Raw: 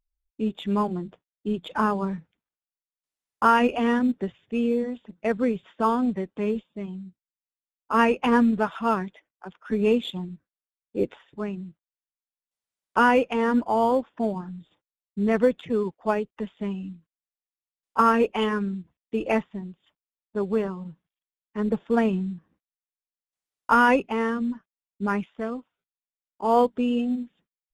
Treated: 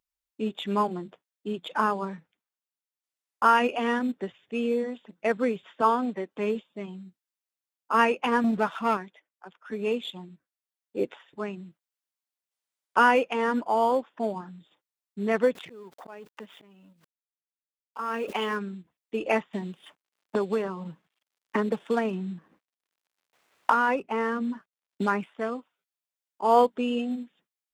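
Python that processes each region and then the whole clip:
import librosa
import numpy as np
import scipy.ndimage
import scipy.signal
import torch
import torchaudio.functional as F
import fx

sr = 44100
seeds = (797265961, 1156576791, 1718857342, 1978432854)

y = fx.chain(x, sr, fx.highpass(hz=210.0, slope=12),
    fx.high_shelf(hz=4400.0, db=-4.5), at=(5.81, 6.31))
y = fx.chain(y, sr, fx.low_shelf(hz=240.0, db=7.0),
    fx.leveller(passes=1), at=(8.44, 8.97))
y = fx.chain(y, sr, fx.law_mismatch(coded='A'),
    fx.auto_swell(attack_ms=580.0),
    fx.pre_swell(db_per_s=23.0), at=(15.55, 18.57))
y = fx.chain(y, sr, fx.median_filter(points=9),
    fx.high_shelf(hz=4200.0, db=-6.0),
    fx.band_squash(depth_pct=100), at=(19.53, 25.34))
y = fx.highpass(y, sr, hz=470.0, slope=6)
y = fx.rider(y, sr, range_db=4, speed_s=2.0)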